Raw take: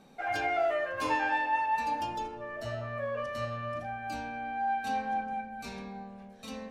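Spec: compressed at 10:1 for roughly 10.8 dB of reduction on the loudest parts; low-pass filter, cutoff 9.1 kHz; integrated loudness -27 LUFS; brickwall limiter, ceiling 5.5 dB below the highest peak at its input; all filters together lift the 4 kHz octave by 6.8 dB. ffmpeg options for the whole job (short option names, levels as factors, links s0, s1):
-af "lowpass=9100,equalizer=f=4000:t=o:g=9,acompressor=threshold=0.0178:ratio=10,volume=4.73,alimiter=limit=0.112:level=0:latency=1"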